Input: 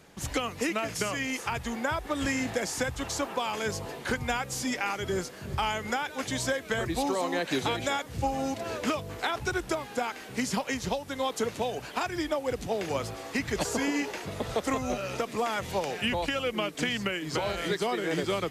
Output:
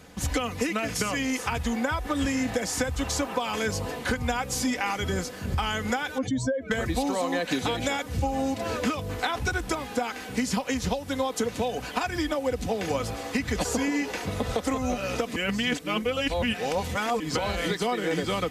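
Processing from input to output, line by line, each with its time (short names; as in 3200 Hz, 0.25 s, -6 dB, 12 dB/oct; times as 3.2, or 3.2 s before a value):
6.18–6.71 spectral contrast raised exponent 2.2
15.36–17.2 reverse
whole clip: bell 84 Hz +8.5 dB 1.4 oct; comb 4 ms, depth 50%; compressor, threshold -27 dBFS; gain +4 dB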